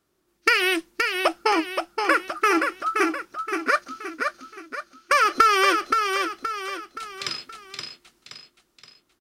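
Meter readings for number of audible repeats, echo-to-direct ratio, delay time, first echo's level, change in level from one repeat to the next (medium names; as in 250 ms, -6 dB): 4, -4.0 dB, 523 ms, -5.0 dB, -7.0 dB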